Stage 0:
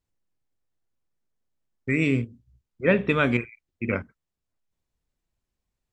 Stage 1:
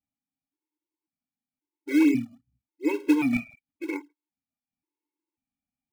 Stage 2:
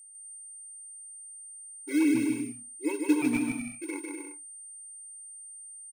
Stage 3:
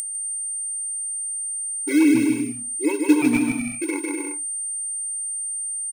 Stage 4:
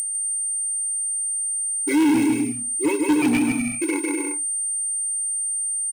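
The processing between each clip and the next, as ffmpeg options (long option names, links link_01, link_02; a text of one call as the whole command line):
ffmpeg -i in.wav -filter_complex "[0:a]asplit=3[link_01][link_02][link_03];[link_01]bandpass=frequency=300:width_type=q:width=8,volume=0dB[link_04];[link_02]bandpass=frequency=870:width_type=q:width=8,volume=-6dB[link_05];[link_03]bandpass=frequency=2240:width_type=q:width=8,volume=-9dB[link_06];[link_04][link_05][link_06]amix=inputs=3:normalize=0,asplit=2[link_07][link_08];[link_08]acrusher=samples=28:mix=1:aa=0.000001:lfo=1:lforange=44.8:lforate=2.7,volume=-9dB[link_09];[link_07][link_09]amix=inputs=2:normalize=0,afftfilt=real='re*gt(sin(2*PI*0.93*pts/sr)*(1-2*mod(floor(b*sr/1024/280),2)),0)':imag='im*gt(sin(2*PI*0.93*pts/sr)*(1-2*mod(floor(b*sr/1024/280),2)),0)':win_size=1024:overlap=0.75,volume=9dB" out.wav
ffmpeg -i in.wav -af "bass=frequency=250:gain=0,treble=frequency=4000:gain=3,aeval=exprs='val(0)+0.00708*sin(2*PI*8800*n/s)':channel_layout=same,aecho=1:1:150|247.5|310.9|352.1|378.8:0.631|0.398|0.251|0.158|0.1,volume=-5dB" out.wav
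ffmpeg -i in.wav -af "acompressor=mode=upward:threshold=-28dB:ratio=2.5,volume=8dB" out.wav
ffmpeg -i in.wav -af "asoftclip=type=tanh:threshold=-17.5dB,volume=3.5dB" out.wav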